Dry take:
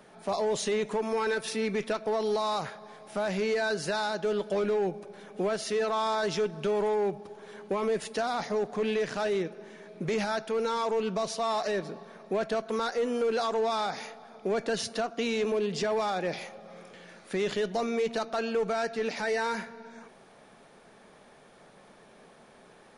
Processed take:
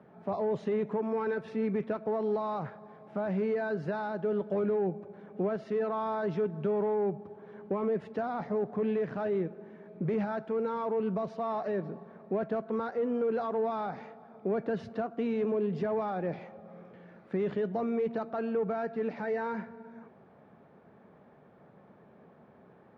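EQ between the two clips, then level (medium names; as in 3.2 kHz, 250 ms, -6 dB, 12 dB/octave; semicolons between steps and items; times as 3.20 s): high-pass 80 Hz 24 dB/octave; low-pass 1.5 kHz 12 dB/octave; bass shelf 230 Hz +11.5 dB; -4.5 dB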